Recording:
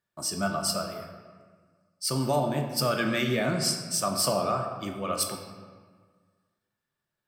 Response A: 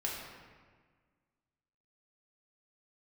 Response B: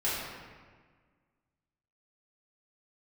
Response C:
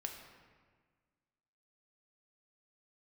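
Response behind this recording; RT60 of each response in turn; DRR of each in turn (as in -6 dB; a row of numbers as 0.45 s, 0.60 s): C; 1.6 s, 1.6 s, 1.6 s; -4.0 dB, -10.0 dB, 2.5 dB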